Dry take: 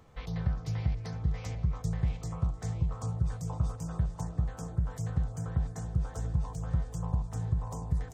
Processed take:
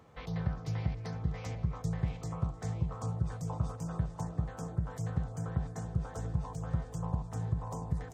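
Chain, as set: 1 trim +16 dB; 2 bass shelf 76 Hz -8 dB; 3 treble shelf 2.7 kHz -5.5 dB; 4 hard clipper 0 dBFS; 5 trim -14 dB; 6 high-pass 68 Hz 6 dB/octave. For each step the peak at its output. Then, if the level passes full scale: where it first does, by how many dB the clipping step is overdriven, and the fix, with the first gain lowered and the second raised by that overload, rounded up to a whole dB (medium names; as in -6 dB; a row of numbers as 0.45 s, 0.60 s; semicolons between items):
-1.0 dBFS, -3.5 dBFS, -3.5 dBFS, -3.5 dBFS, -17.5 dBFS, -17.5 dBFS; nothing clips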